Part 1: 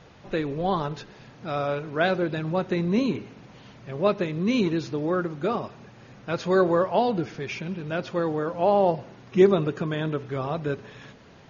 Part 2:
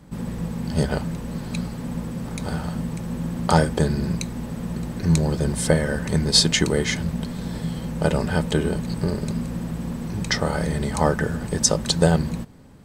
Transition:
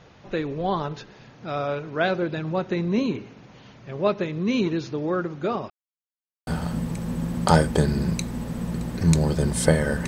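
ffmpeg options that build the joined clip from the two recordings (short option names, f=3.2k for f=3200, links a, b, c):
-filter_complex "[0:a]apad=whole_dur=10.07,atrim=end=10.07,asplit=2[a][b];[a]atrim=end=5.7,asetpts=PTS-STARTPTS,afade=t=out:st=5.696:d=0.004:c=hsin[c];[b]atrim=start=5.7:end=6.47,asetpts=PTS-STARTPTS,volume=0[d];[1:a]atrim=start=2.49:end=6.09,asetpts=PTS-STARTPTS,afade=t=in:d=0.004:c=hsin[e];[c][d][e]concat=n=3:v=0:a=1"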